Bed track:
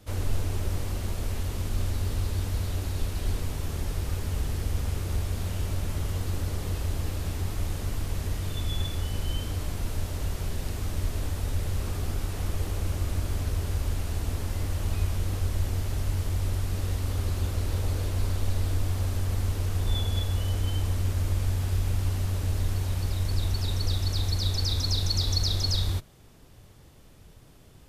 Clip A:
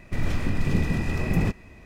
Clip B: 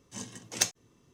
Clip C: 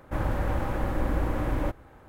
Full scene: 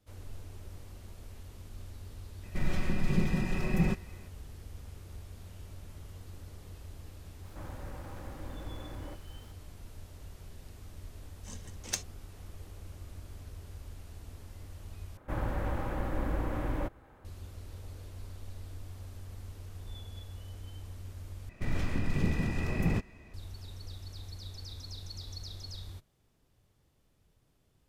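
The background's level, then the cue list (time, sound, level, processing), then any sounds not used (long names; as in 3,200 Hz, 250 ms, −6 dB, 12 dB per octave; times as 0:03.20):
bed track −17.5 dB
0:02.43: mix in A −6.5 dB + comb filter 5.4 ms, depth 64%
0:07.44: mix in C −17 dB + converter with a step at zero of −38.5 dBFS
0:11.32: mix in B −7.5 dB
0:15.17: overwrite with C −5.5 dB
0:21.49: overwrite with A −6 dB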